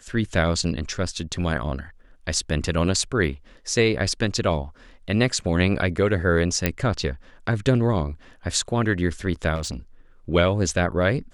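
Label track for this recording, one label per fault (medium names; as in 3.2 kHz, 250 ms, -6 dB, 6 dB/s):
6.660000	6.660000	pop -5 dBFS
9.550000	9.770000	clipped -25 dBFS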